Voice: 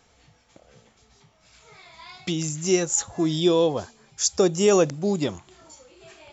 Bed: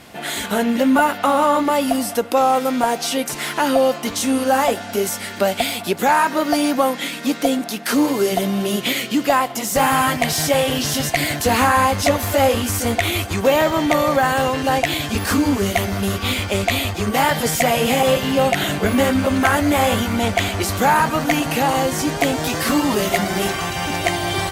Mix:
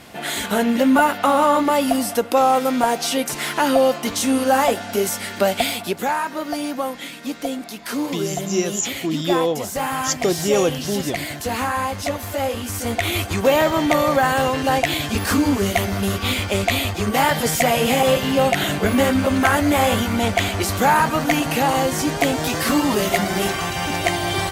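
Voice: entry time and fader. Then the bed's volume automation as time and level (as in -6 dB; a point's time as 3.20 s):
5.85 s, -0.5 dB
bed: 5.70 s 0 dB
6.20 s -7.5 dB
12.56 s -7.5 dB
13.20 s -0.5 dB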